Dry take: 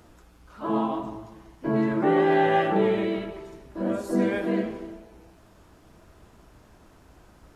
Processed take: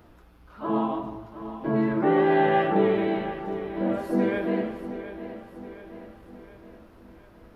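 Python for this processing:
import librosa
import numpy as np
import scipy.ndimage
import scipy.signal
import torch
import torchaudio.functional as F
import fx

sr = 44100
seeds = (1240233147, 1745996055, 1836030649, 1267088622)

p1 = fx.peak_eq(x, sr, hz=7400.0, db=-13.5, octaves=0.99)
y = p1 + fx.echo_feedback(p1, sr, ms=719, feedback_pct=52, wet_db=-12, dry=0)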